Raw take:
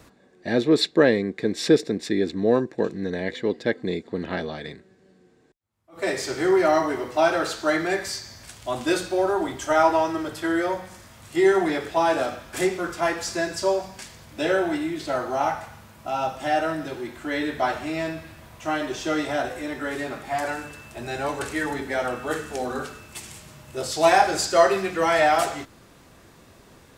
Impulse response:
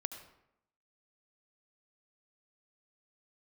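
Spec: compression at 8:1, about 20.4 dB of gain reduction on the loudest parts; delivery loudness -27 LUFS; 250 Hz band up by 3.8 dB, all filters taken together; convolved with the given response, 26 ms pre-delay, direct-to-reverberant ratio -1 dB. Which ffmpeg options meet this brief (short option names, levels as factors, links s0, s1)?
-filter_complex "[0:a]equalizer=f=250:t=o:g=5.5,acompressor=threshold=0.0251:ratio=8,asplit=2[s0][s1];[1:a]atrim=start_sample=2205,adelay=26[s2];[s1][s2]afir=irnorm=-1:irlink=0,volume=1.19[s3];[s0][s3]amix=inputs=2:normalize=0,volume=2"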